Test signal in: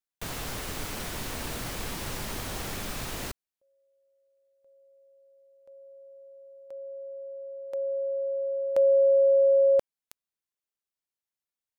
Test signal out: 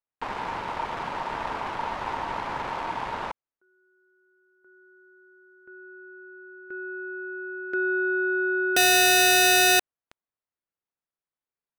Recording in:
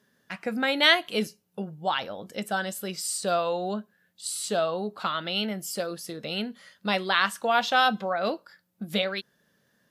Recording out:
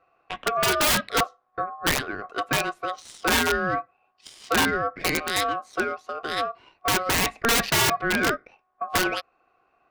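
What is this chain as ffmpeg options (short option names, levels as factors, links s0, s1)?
-af "adynamicsmooth=sensitivity=2.5:basefreq=1500,aeval=exprs='(mod(10*val(0)+1,2)-1)/10':c=same,aeval=exprs='val(0)*sin(2*PI*920*n/s)':c=same,volume=2.51"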